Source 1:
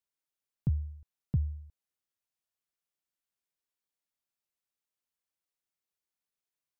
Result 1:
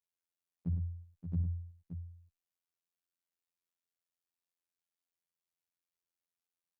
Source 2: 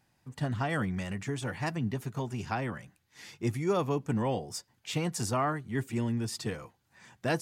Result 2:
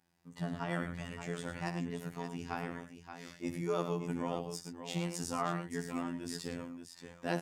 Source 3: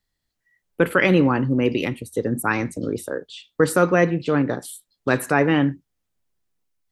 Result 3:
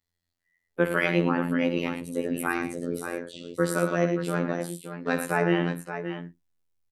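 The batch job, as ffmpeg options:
ffmpeg -i in.wav -af "aecho=1:1:62|105|576:0.251|0.355|0.355,afreqshift=16,afftfilt=real='hypot(re,im)*cos(PI*b)':imag='0':win_size=2048:overlap=0.75,volume=-3dB" out.wav

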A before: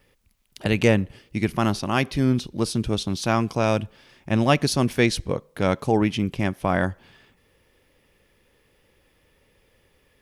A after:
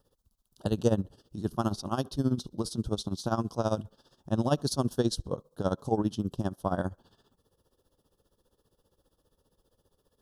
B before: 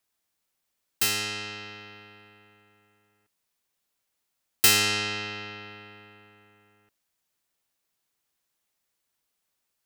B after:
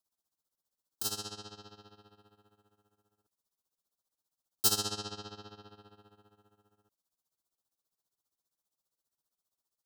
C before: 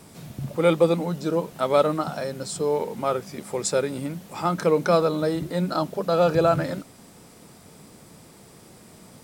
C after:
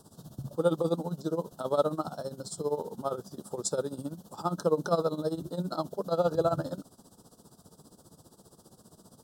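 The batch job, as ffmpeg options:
ffmpeg -i in.wav -af "tremolo=f=15:d=0.81,asuperstop=centerf=2200:order=4:qfactor=1,volume=-4dB" out.wav

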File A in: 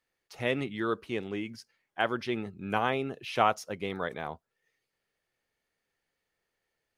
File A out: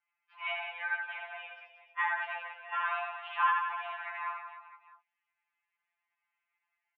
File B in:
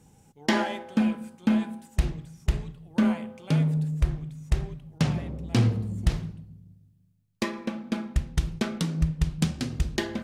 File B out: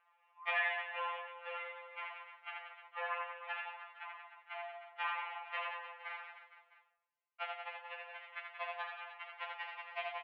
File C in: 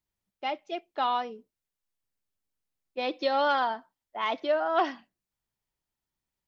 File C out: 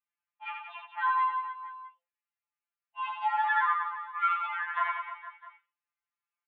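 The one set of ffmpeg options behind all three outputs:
ffmpeg -i in.wav -filter_complex "[0:a]asplit=2[link_01][link_02];[link_02]asoftclip=type=hard:threshold=-24.5dB,volume=-9dB[link_03];[link_01][link_03]amix=inputs=2:normalize=0,highpass=frequency=560:width_type=q:width=0.5412,highpass=frequency=560:width_type=q:width=1.307,lowpass=frequency=2400:width_type=q:width=0.5176,lowpass=frequency=2400:width_type=q:width=0.7071,lowpass=frequency=2400:width_type=q:width=1.932,afreqshift=300,aecho=1:1:80|180|305|461.2|656.6:0.631|0.398|0.251|0.158|0.1,afftfilt=real='re*2.83*eq(mod(b,8),0)':imag='im*2.83*eq(mod(b,8),0)':win_size=2048:overlap=0.75,volume=-1.5dB" out.wav

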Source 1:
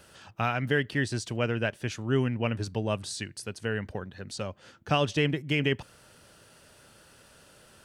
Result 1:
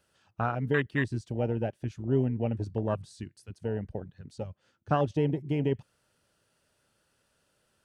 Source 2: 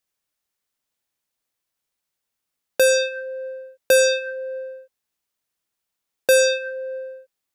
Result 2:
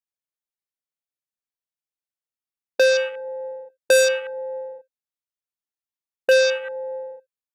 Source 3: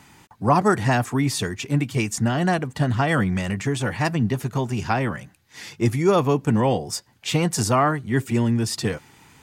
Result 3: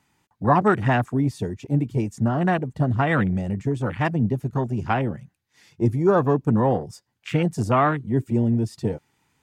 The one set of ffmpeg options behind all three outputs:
ffmpeg -i in.wav -af "afwtdn=0.0447" out.wav

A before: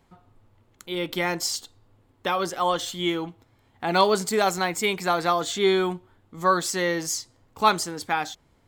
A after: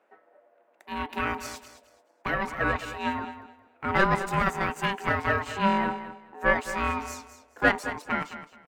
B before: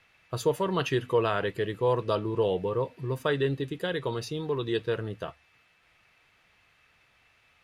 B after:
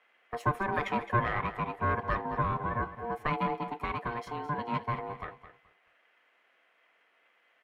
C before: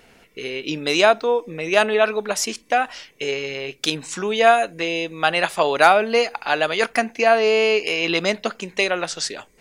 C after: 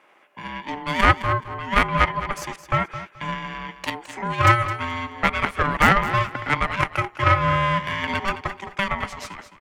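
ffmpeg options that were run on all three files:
ffmpeg -i in.wav -filter_complex "[0:a]aeval=exprs='0.891*(cos(1*acos(clip(val(0)/0.891,-1,1)))-cos(1*PI/2))+0.398*(cos(4*acos(clip(val(0)/0.891,-1,1)))-cos(4*PI/2))+0.316*(cos(6*acos(clip(val(0)/0.891,-1,1)))-cos(6*PI/2))':channel_layout=same,aeval=exprs='val(0)*sin(2*PI*590*n/s)':channel_layout=same,highshelf=frequency=3000:width_type=q:width=1.5:gain=-9.5,acrossover=split=240[link_01][link_02];[link_01]aeval=exprs='sgn(val(0))*max(abs(val(0))-0.00355,0)':channel_layout=same[link_03];[link_03][link_02]amix=inputs=2:normalize=0,aecho=1:1:214|428|642:0.237|0.0522|0.0115,volume=-1dB" out.wav

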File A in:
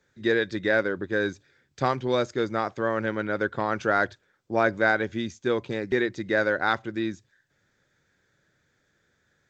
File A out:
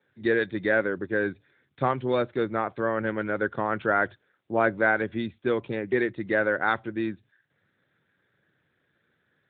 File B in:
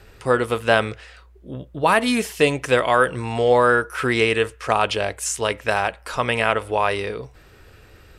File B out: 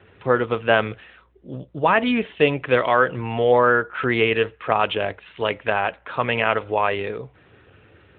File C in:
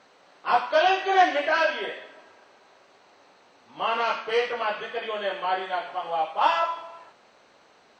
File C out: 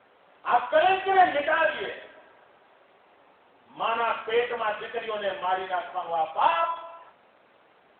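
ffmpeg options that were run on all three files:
ffmpeg -i in.wav -ar 8000 -c:a libopencore_amrnb -b:a 12200 out.amr

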